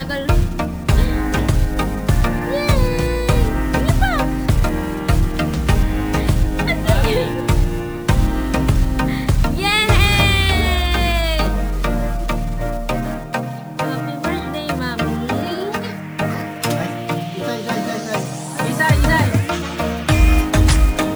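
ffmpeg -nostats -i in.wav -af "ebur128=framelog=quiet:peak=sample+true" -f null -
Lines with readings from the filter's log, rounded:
Integrated loudness:
  I:         -18.6 LUFS
  Threshold: -28.6 LUFS
Loudness range:
  LRA:         6.4 LU
  Threshold: -38.8 LUFS
  LRA low:   -22.7 LUFS
  LRA high:  -16.3 LUFS
Sample peak:
  Peak:       -2.1 dBFS
True peak:
  Peak:       -1.9 dBFS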